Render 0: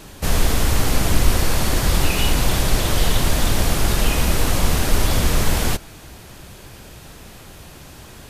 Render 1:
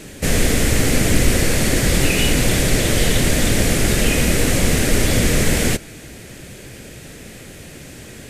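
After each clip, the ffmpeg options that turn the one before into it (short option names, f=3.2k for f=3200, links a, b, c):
-af "equalizer=f=125:t=o:w=1:g=5,equalizer=f=250:t=o:w=1:g=7,equalizer=f=500:t=o:w=1:g=8,equalizer=f=1k:t=o:w=1:g=-8,equalizer=f=2k:t=o:w=1:g=10,equalizer=f=8k:t=o:w=1:g=8,volume=-2dB"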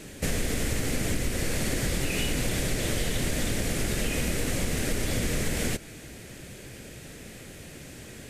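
-af "acompressor=threshold=-17dB:ratio=6,volume=-6.5dB"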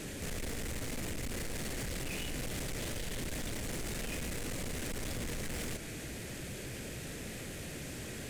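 -af "alimiter=level_in=2.5dB:limit=-24dB:level=0:latency=1:release=27,volume=-2.5dB,asoftclip=type=tanh:threshold=-37.5dB,volume=2.5dB"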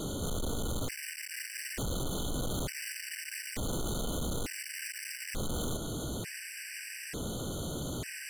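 -af "asoftclip=type=tanh:threshold=-39dB,afftfilt=real='re*gt(sin(2*PI*0.56*pts/sr)*(1-2*mod(floor(b*sr/1024/1500),2)),0)':imag='im*gt(sin(2*PI*0.56*pts/sr)*(1-2*mod(floor(b*sr/1024/1500),2)),0)':win_size=1024:overlap=0.75,volume=9dB"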